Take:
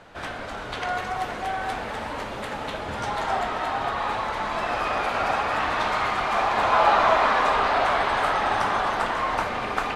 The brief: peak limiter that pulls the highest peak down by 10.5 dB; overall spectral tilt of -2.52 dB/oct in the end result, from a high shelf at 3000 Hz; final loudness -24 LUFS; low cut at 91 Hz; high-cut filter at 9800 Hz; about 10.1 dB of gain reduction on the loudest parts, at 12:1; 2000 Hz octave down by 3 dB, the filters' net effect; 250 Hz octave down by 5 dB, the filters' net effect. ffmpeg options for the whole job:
-af "highpass=91,lowpass=9.8k,equalizer=f=250:t=o:g=-6.5,equalizer=f=2k:t=o:g=-7,highshelf=f=3k:g=8.5,acompressor=threshold=-25dB:ratio=12,volume=8.5dB,alimiter=limit=-15.5dB:level=0:latency=1"

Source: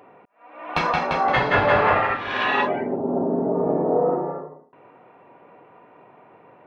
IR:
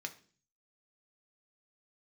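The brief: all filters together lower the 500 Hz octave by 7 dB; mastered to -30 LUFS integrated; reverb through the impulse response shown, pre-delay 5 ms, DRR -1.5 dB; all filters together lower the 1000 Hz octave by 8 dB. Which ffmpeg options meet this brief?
-filter_complex "[0:a]equalizer=f=500:t=o:g=-6.5,equalizer=f=1k:t=o:g=-8.5,asplit=2[a][b];[1:a]atrim=start_sample=2205,adelay=5[c];[b][c]afir=irnorm=-1:irlink=0,volume=2.5dB[d];[a][d]amix=inputs=2:normalize=0,volume=-7dB"

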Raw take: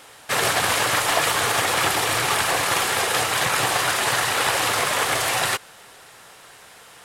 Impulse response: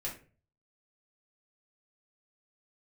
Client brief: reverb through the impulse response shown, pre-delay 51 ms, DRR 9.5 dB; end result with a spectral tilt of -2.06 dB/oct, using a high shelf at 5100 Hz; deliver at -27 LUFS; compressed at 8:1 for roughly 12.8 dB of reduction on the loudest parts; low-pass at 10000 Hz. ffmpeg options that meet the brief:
-filter_complex "[0:a]lowpass=10k,highshelf=f=5.1k:g=-7,acompressor=threshold=-31dB:ratio=8,asplit=2[a][b];[1:a]atrim=start_sample=2205,adelay=51[c];[b][c]afir=irnorm=-1:irlink=0,volume=-10.5dB[d];[a][d]amix=inputs=2:normalize=0,volume=5.5dB"

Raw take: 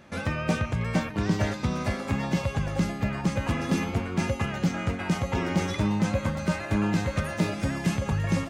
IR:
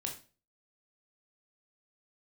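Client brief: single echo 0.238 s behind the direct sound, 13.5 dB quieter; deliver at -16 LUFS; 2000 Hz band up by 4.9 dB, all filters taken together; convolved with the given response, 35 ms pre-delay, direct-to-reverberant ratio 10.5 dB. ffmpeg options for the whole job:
-filter_complex "[0:a]equalizer=f=2k:t=o:g=6,aecho=1:1:238:0.211,asplit=2[a][b];[1:a]atrim=start_sample=2205,adelay=35[c];[b][c]afir=irnorm=-1:irlink=0,volume=-10.5dB[d];[a][d]amix=inputs=2:normalize=0,volume=10dB"

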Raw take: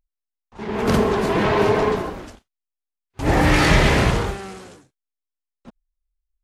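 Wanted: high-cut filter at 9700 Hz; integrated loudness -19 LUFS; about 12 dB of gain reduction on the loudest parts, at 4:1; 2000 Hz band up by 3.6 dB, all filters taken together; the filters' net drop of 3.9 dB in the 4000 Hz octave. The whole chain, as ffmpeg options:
-af "lowpass=9.7k,equalizer=f=2k:t=o:g=6,equalizer=f=4k:t=o:g=-8,acompressor=threshold=-25dB:ratio=4,volume=9dB"

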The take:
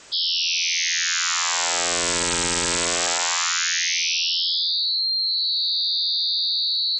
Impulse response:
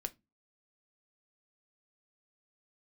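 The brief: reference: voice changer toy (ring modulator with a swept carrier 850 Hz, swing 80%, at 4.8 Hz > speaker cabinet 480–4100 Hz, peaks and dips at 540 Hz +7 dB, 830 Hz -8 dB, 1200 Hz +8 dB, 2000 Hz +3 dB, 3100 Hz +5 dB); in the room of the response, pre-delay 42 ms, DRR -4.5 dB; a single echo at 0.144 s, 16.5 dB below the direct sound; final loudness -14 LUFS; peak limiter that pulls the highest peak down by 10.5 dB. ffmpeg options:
-filter_complex "[0:a]alimiter=level_in=1dB:limit=-24dB:level=0:latency=1,volume=-1dB,aecho=1:1:144:0.15,asplit=2[a][b];[1:a]atrim=start_sample=2205,adelay=42[c];[b][c]afir=irnorm=-1:irlink=0,volume=6dB[d];[a][d]amix=inputs=2:normalize=0,aeval=exprs='val(0)*sin(2*PI*850*n/s+850*0.8/4.8*sin(2*PI*4.8*n/s))':c=same,highpass=480,equalizer=f=540:t=q:w=4:g=7,equalizer=f=830:t=q:w=4:g=-8,equalizer=f=1.2k:t=q:w=4:g=8,equalizer=f=2k:t=q:w=4:g=3,equalizer=f=3.1k:t=q:w=4:g=5,lowpass=f=4.1k:w=0.5412,lowpass=f=4.1k:w=1.3066,volume=10dB"

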